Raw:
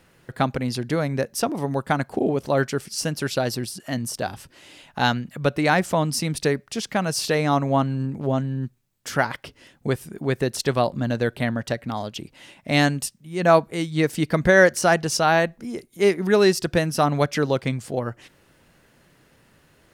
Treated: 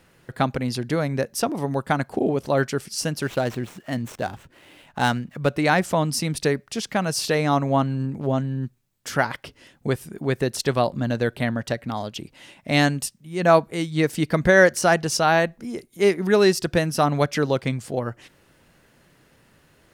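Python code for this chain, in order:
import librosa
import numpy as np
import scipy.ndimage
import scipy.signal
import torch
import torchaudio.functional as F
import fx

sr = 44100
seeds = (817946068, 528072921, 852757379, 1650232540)

y = fx.median_filter(x, sr, points=9, at=(3.21, 5.56))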